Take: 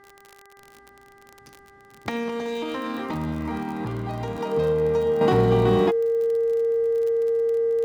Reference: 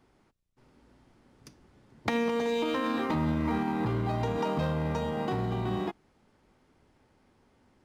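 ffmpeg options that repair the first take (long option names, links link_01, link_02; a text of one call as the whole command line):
ffmpeg -i in.wav -af "adeclick=threshold=4,bandreject=frequency=397.7:width_type=h:width=4,bandreject=frequency=795.4:width_type=h:width=4,bandreject=frequency=1193.1:width_type=h:width=4,bandreject=frequency=1590.8:width_type=h:width=4,bandreject=frequency=1988.5:width_type=h:width=4,bandreject=frequency=460:width=30,asetnsamples=nb_out_samples=441:pad=0,asendcmd='5.21 volume volume -10dB',volume=0dB" out.wav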